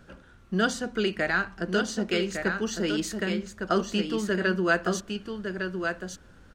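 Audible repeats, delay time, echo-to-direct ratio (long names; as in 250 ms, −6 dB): 1, 1,157 ms, −6.0 dB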